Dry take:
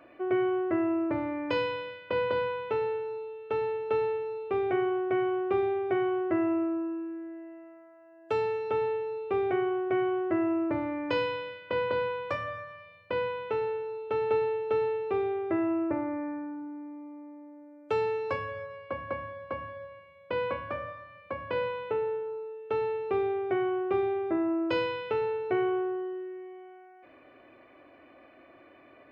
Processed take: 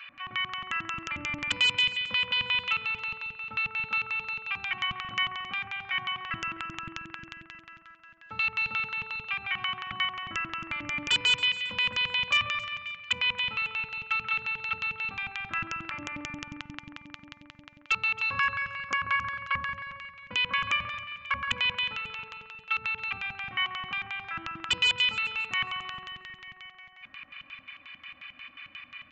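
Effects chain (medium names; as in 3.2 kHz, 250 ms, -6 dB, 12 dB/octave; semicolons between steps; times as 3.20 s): bass shelf 110 Hz +9 dB; de-hum 46.44 Hz, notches 23; in parallel at +2 dB: compressor with a negative ratio -33 dBFS, ratio -1; on the sum: comb 3.7 ms, depth 71%; LFO band-pass square 5.6 Hz 210–2900 Hz; FFT filter 130 Hz 0 dB, 370 Hz -26 dB, 1.2 kHz +9 dB; wavefolder -21 dBFS; on a send: echo whose repeats swap between lows and highs 136 ms, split 1.9 kHz, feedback 61%, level -11 dB; on the sum: resampled via 16 kHz; trim +4.5 dB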